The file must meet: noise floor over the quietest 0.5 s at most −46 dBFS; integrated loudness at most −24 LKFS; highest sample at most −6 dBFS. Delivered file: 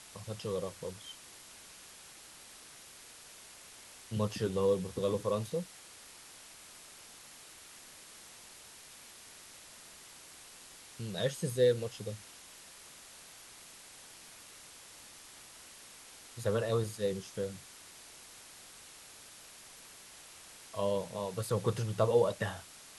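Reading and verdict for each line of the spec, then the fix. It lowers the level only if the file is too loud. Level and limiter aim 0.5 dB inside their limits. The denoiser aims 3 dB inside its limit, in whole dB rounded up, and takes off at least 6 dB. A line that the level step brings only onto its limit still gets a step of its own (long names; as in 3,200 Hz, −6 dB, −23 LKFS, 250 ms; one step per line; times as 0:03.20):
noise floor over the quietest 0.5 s −54 dBFS: in spec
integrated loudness −34.5 LKFS: in spec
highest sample −15.0 dBFS: in spec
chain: no processing needed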